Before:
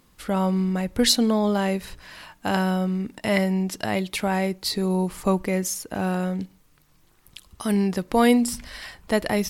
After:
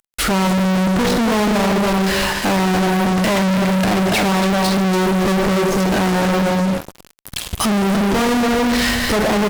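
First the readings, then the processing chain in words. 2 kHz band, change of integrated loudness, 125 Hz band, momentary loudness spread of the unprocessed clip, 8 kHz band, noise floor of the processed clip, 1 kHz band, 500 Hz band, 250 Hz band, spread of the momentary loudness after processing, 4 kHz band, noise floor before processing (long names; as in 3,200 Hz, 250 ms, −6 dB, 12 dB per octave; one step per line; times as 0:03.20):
+10.5 dB, +7.0 dB, +8.5 dB, 13 LU, +5.5 dB, −46 dBFS, +10.0 dB, +7.0 dB, +7.0 dB, 2 LU, +7.0 dB, −59 dBFS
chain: treble cut that deepens with the level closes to 1,200 Hz, closed at −21.5 dBFS
on a send: single-tap delay 287 ms −7 dB
on the sum: four-comb reverb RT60 1 s, combs from 31 ms, DRR 8.5 dB
fuzz pedal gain 48 dB, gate −49 dBFS
level −2 dB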